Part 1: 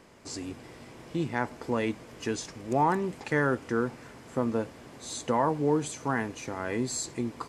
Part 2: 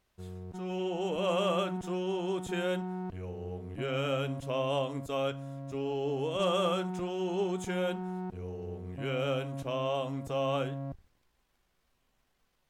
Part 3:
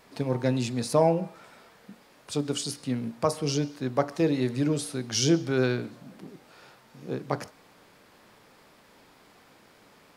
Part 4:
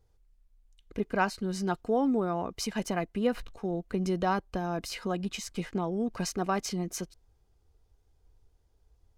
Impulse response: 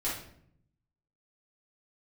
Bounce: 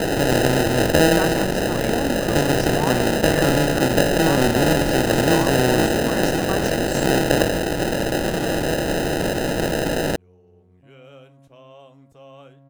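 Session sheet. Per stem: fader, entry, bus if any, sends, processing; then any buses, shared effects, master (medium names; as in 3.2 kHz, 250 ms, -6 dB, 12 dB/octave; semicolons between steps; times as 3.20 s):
-3.0 dB, 0.00 s, no send, none
-13.5 dB, 1.85 s, no send, none
0.0 dB, 0.00 s, no send, spectral levelling over time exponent 0.2; sample-and-hold 39×
-1.5 dB, 0.00 s, no send, none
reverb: none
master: none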